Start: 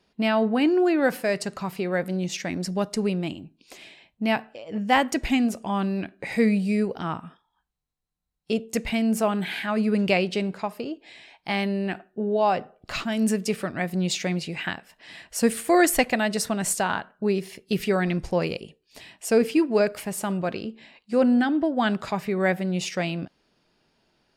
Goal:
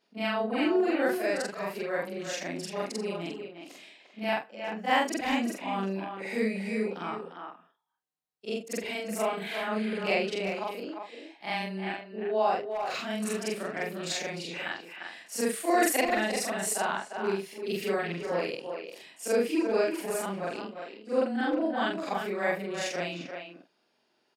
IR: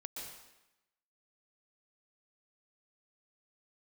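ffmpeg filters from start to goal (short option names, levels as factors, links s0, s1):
-filter_complex "[0:a]afftfilt=real='re':imag='-im':win_size=4096:overlap=0.75,highpass=270,asplit=2[s0][s1];[s1]adelay=350,highpass=300,lowpass=3400,asoftclip=type=hard:threshold=0.0944,volume=0.501[s2];[s0][s2]amix=inputs=2:normalize=0"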